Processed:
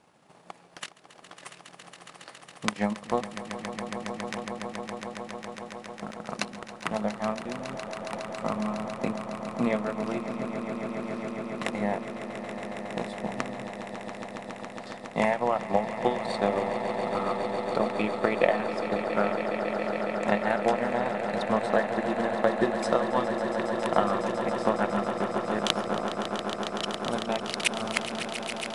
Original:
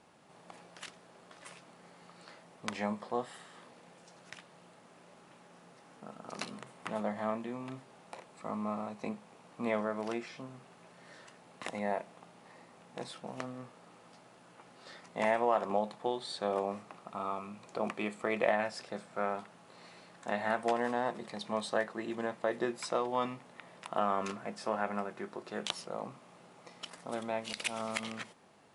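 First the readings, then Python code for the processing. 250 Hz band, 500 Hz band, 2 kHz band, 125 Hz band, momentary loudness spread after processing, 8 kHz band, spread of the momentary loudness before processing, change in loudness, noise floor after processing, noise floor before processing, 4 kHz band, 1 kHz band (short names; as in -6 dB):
+9.5 dB, +8.0 dB, +7.5 dB, +10.5 dB, 14 LU, +7.5 dB, 22 LU, +6.5 dB, -52 dBFS, -59 dBFS, +8.5 dB, +7.0 dB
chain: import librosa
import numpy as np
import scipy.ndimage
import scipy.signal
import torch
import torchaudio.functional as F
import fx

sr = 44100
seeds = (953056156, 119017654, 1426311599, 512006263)

y = fx.transient(x, sr, attack_db=10, sustain_db=-10)
y = fx.echo_swell(y, sr, ms=138, loudest=8, wet_db=-11.5)
y = fx.dynamic_eq(y, sr, hz=180.0, q=1.3, threshold_db=-46.0, ratio=4.0, max_db=6)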